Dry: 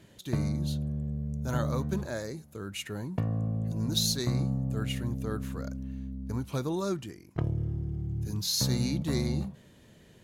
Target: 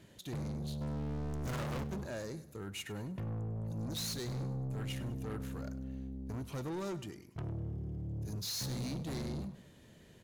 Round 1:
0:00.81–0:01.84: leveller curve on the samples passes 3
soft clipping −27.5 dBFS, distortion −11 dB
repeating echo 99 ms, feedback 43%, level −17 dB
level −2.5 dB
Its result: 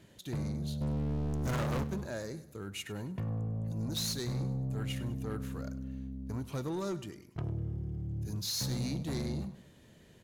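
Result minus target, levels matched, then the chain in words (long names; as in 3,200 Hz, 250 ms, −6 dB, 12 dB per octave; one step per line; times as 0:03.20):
soft clipping: distortion −4 dB
0:00.81–0:01.84: leveller curve on the samples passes 3
soft clipping −33.5 dBFS, distortion −6 dB
repeating echo 99 ms, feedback 43%, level −17 dB
level −2.5 dB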